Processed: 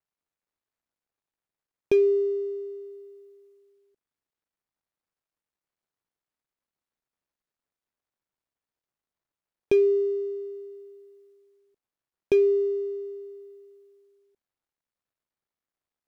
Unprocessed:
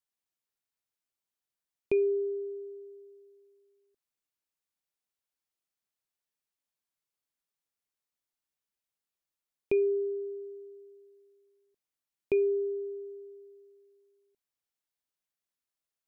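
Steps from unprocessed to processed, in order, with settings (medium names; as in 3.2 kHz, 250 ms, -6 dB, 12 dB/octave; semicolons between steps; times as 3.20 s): median filter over 15 samples; trim +6.5 dB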